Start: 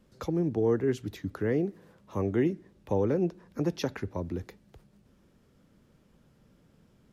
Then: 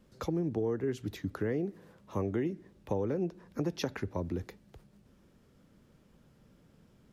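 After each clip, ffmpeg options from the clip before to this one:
-af "acompressor=threshold=0.0398:ratio=5"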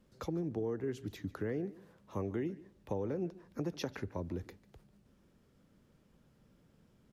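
-af "aecho=1:1:146:0.106,volume=0.596"

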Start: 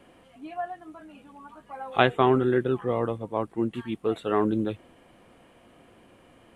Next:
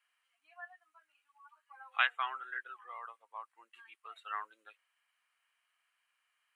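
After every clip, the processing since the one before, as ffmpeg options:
-af "bandreject=f=3500:w=9.9,afftdn=nr=14:nf=-35,highpass=f=1300:w=0.5412,highpass=f=1300:w=1.3066,volume=0.794"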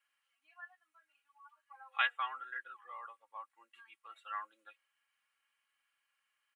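-af "aecho=1:1:3.6:0.71,volume=0.631"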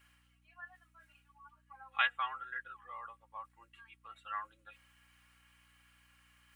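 -af "areverse,acompressor=mode=upward:threshold=0.00158:ratio=2.5,areverse,aeval=exprs='val(0)+0.000282*(sin(2*PI*60*n/s)+sin(2*PI*2*60*n/s)/2+sin(2*PI*3*60*n/s)/3+sin(2*PI*4*60*n/s)/4+sin(2*PI*5*60*n/s)/5)':c=same,volume=1.12"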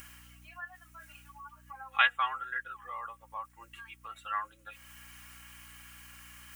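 -filter_complex "[0:a]asplit=2[s0][s1];[s1]acompressor=mode=upward:threshold=0.00631:ratio=2.5,volume=1[s2];[s0][s2]amix=inputs=2:normalize=0,aexciter=amount=2.1:drive=5.5:freq=5400"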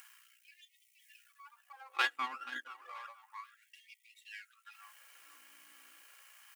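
-af "aeval=exprs='if(lt(val(0),0),0.251*val(0),val(0))':c=same,aecho=1:1:481|962|1443:0.133|0.048|0.0173,afftfilt=real='re*gte(b*sr/1024,220*pow(1900/220,0.5+0.5*sin(2*PI*0.31*pts/sr)))':imag='im*gte(b*sr/1024,220*pow(1900/220,0.5+0.5*sin(2*PI*0.31*pts/sr)))':win_size=1024:overlap=0.75,volume=0.668"

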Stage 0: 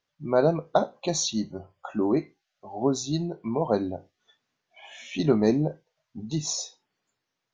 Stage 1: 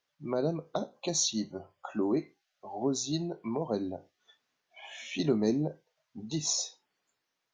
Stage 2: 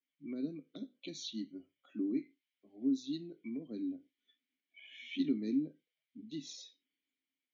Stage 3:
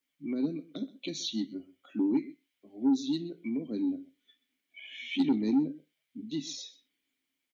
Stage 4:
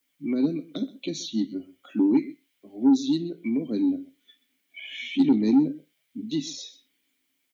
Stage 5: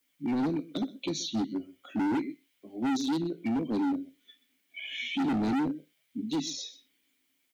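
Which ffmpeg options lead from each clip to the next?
-filter_complex "[0:a]lowshelf=f=210:g=-10.5,acrossover=split=390|4200[s0][s1][s2];[s1]acompressor=threshold=0.0141:ratio=5[s3];[s0][s3][s2]amix=inputs=3:normalize=0"
-filter_complex "[0:a]adynamicequalizer=threshold=0.00282:dfrequency=3700:dqfactor=1.9:tfrequency=3700:tqfactor=1.9:attack=5:release=100:ratio=0.375:range=3:mode=boostabove:tftype=bell,asplit=3[s0][s1][s2];[s0]bandpass=f=270:t=q:w=8,volume=1[s3];[s1]bandpass=f=2290:t=q:w=8,volume=0.501[s4];[s2]bandpass=f=3010:t=q:w=8,volume=0.355[s5];[s3][s4][s5]amix=inputs=3:normalize=0,volume=1.26"
-af "aecho=1:1:127:0.112,asoftclip=type=tanh:threshold=0.0447,volume=2.66"
-filter_complex "[0:a]acrossover=split=640[s0][s1];[s1]alimiter=level_in=3.16:limit=0.0631:level=0:latency=1:release=392,volume=0.316[s2];[s0][s2]amix=inputs=2:normalize=0,crystalizer=i=0.5:c=0,volume=2.24"
-af "asoftclip=type=hard:threshold=0.0501"

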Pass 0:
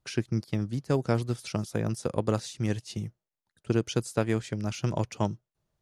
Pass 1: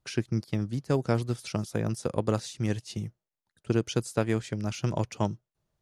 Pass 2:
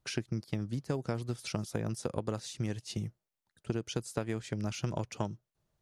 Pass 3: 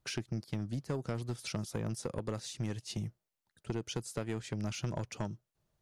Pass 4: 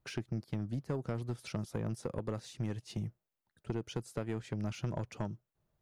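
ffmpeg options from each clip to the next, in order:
-af anull
-af "acompressor=threshold=0.0316:ratio=6"
-af "asoftclip=type=tanh:threshold=0.0447"
-af "equalizer=f=7000:t=o:w=2.5:g=-8.5"

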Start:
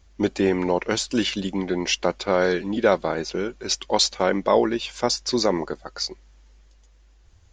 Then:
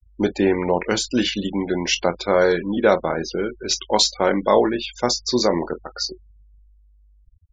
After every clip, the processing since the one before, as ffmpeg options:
-af "aecho=1:1:24|46:0.335|0.141,afftfilt=real='re*gte(hypot(re,im),0.0224)':imag='im*gte(hypot(re,im),0.0224)':win_size=1024:overlap=0.75,volume=1.26"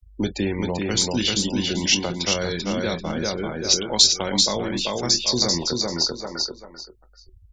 -filter_complex "[0:a]aecho=1:1:390|780|1170:0.631|0.139|0.0305,acrossover=split=170|3000[s0][s1][s2];[s1]acompressor=threshold=0.0251:ratio=5[s3];[s0][s3][s2]amix=inputs=3:normalize=0,volume=1.68"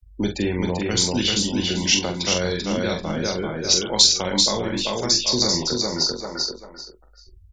-filter_complex "[0:a]asplit=2[s0][s1];[s1]adelay=44,volume=0.501[s2];[s0][s2]amix=inputs=2:normalize=0"

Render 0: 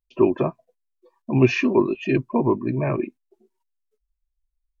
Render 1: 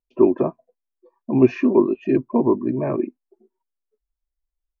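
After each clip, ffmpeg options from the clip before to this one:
-af "firequalizer=gain_entry='entry(130,0);entry(240,9);entry(3000,-8)':delay=0.05:min_phase=1,volume=0.531"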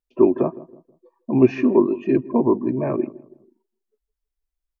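-filter_complex "[0:a]asplit=2[s0][s1];[s1]adelay=161,lowpass=f=950:p=1,volume=0.126,asplit=2[s2][s3];[s3]adelay=161,lowpass=f=950:p=1,volume=0.39,asplit=2[s4][s5];[s5]adelay=161,lowpass=f=950:p=1,volume=0.39[s6];[s0][s2][s4][s6]amix=inputs=4:normalize=0"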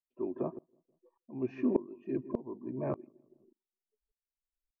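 -af "highshelf=f=2300:g=-8.5,aeval=exprs='val(0)*pow(10,-23*if(lt(mod(-1.7*n/s,1),2*abs(-1.7)/1000),1-mod(-1.7*n/s,1)/(2*abs(-1.7)/1000),(mod(-1.7*n/s,1)-2*abs(-1.7)/1000)/(1-2*abs(-1.7)/1000))/20)':c=same,volume=0.422"

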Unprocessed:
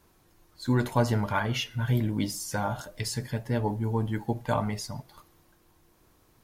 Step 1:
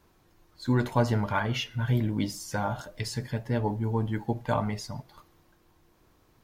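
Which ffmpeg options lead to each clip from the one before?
-af "equalizer=f=11000:t=o:w=1.2:g=-7.5"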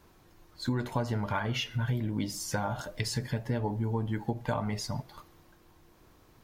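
-af "acompressor=threshold=0.0282:ratio=6,volume=1.5"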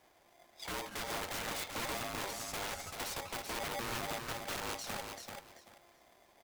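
-filter_complex "[0:a]aeval=exprs='(mod(23.7*val(0)+1,2)-1)/23.7':c=same,asplit=2[s0][s1];[s1]aecho=0:1:387|774|1161:0.531|0.111|0.0234[s2];[s0][s2]amix=inputs=2:normalize=0,aeval=exprs='val(0)*sgn(sin(2*PI*690*n/s))':c=same,volume=0.447"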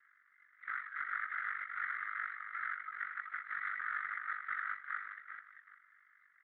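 -af "asuperpass=centerf=1600:order=12:qfactor=1.9,aeval=exprs='val(0)*sin(2*PI*24*n/s)':c=same,volume=3.76" -ar 16000 -c:a libspeex -b:a 34k

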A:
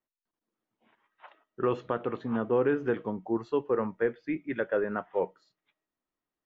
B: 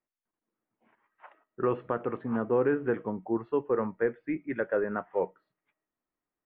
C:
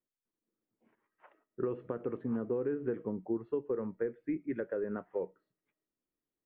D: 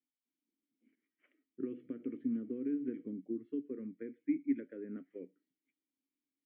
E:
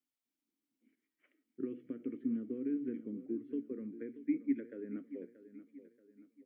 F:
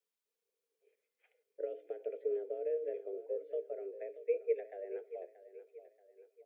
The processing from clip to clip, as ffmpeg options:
-af "lowpass=f=2400:w=0.5412,lowpass=f=2400:w=1.3066"
-af "acompressor=threshold=0.0355:ratio=6,lowshelf=f=580:t=q:w=1.5:g=6.5,volume=0.398"
-filter_complex "[0:a]asplit=3[s0][s1][s2];[s0]bandpass=f=270:t=q:w=8,volume=1[s3];[s1]bandpass=f=2290:t=q:w=8,volume=0.501[s4];[s2]bandpass=f=3010:t=q:w=8,volume=0.355[s5];[s3][s4][s5]amix=inputs=3:normalize=0,volume=2.24"
-af "aecho=1:1:631|1262|1893|2524:0.2|0.0858|0.0369|0.0159"
-af "afreqshift=180"

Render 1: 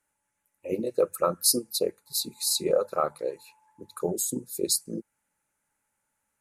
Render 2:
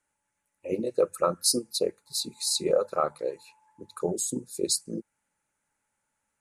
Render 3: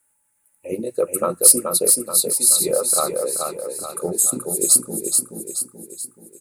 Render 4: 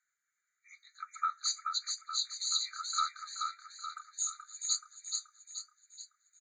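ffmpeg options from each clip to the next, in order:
-af "lowpass=f=10000:w=0.5412,lowpass=f=10000:w=1.3066"
-filter_complex "[0:a]aexciter=amount=8.4:drive=4.3:freq=8300,acontrast=27,asplit=2[s0][s1];[s1]aecho=0:1:429|858|1287|1716|2145|2574:0.596|0.286|0.137|0.0659|0.0316|0.0152[s2];[s0][s2]amix=inputs=2:normalize=0,volume=0.794"
-af "flanger=delay=5.2:depth=5.3:regen=75:speed=1:shape=sinusoidal,aresample=16000,aresample=44100,afftfilt=real='re*eq(mod(floor(b*sr/1024/1200),2),1)':imag='im*eq(mod(floor(b*sr/1024/1200),2),1)':win_size=1024:overlap=0.75"

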